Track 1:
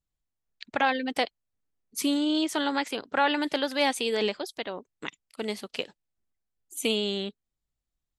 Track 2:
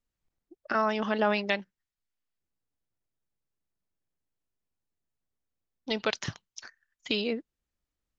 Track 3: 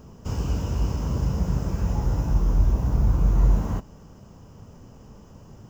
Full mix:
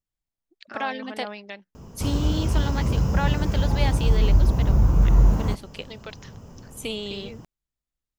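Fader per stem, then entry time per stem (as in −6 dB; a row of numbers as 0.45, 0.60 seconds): −4.5, −10.5, +2.5 decibels; 0.00, 0.00, 1.75 seconds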